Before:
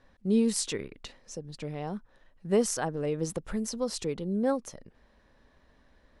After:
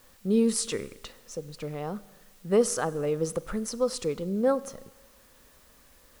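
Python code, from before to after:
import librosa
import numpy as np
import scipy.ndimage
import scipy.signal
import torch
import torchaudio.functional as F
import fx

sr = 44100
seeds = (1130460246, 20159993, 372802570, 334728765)

y = fx.graphic_eq_31(x, sr, hz=(500, 1250, 10000), db=(6, 9, 4))
y = fx.rev_schroeder(y, sr, rt60_s=1.2, comb_ms=31, drr_db=18.5)
y = fx.quant_dither(y, sr, seeds[0], bits=10, dither='triangular')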